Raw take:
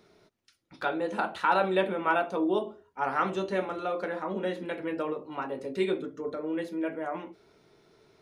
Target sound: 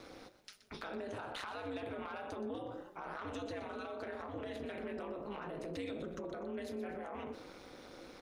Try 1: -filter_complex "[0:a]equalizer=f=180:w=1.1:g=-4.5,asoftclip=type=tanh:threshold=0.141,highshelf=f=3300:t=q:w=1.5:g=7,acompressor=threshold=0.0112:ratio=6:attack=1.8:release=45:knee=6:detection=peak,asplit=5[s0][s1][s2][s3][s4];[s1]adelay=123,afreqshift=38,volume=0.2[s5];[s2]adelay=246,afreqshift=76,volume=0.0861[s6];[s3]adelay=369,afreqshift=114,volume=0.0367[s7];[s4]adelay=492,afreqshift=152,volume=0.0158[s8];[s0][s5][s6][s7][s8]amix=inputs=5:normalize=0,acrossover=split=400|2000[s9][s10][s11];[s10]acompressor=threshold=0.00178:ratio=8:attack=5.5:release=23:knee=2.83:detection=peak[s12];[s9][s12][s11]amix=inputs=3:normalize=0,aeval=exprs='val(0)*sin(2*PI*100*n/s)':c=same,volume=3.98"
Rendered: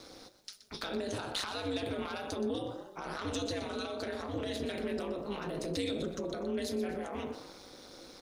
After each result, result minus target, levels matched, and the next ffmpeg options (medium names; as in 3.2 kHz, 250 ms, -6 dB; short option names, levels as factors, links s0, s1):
compression: peak gain reduction -9.5 dB; 8 kHz band +7.5 dB
-filter_complex "[0:a]equalizer=f=180:w=1.1:g=-4.5,asoftclip=type=tanh:threshold=0.141,highshelf=f=3300:t=q:w=1.5:g=7,acompressor=threshold=0.00316:ratio=6:attack=1.8:release=45:knee=6:detection=peak,asplit=5[s0][s1][s2][s3][s4];[s1]adelay=123,afreqshift=38,volume=0.2[s5];[s2]adelay=246,afreqshift=76,volume=0.0861[s6];[s3]adelay=369,afreqshift=114,volume=0.0367[s7];[s4]adelay=492,afreqshift=152,volume=0.0158[s8];[s0][s5][s6][s7][s8]amix=inputs=5:normalize=0,acrossover=split=400|2000[s9][s10][s11];[s10]acompressor=threshold=0.00178:ratio=8:attack=5.5:release=23:knee=2.83:detection=peak[s12];[s9][s12][s11]amix=inputs=3:normalize=0,aeval=exprs='val(0)*sin(2*PI*100*n/s)':c=same,volume=3.98"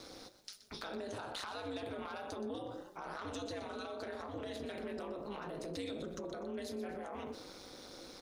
8 kHz band +7.0 dB
-filter_complex "[0:a]equalizer=f=180:w=1.1:g=-4.5,asoftclip=type=tanh:threshold=0.141,acompressor=threshold=0.00316:ratio=6:attack=1.8:release=45:knee=6:detection=peak,asplit=5[s0][s1][s2][s3][s4];[s1]adelay=123,afreqshift=38,volume=0.2[s5];[s2]adelay=246,afreqshift=76,volume=0.0861[s6];[s3]adelay=369,afreqshift=114,volume=0.0367[s7];[s4]adelay=492,afreqshift=152,volume=0.0158[s8];[s0][s5][s6][s7][s8]amix=inputs=5:normalize=0,acrossover=split=400|2000[s9][s10][s11];[s10]acompressor=threshold=0.00178:ratio=8:attack=5.5:release=23:knee=2.83:detection=peak[s12];[s9][s12][s11]amix=inputs=3:normalize=0,aeval=exprs='val(0)*sin(2*PI*100*n/s)':c=same,volume=3.98"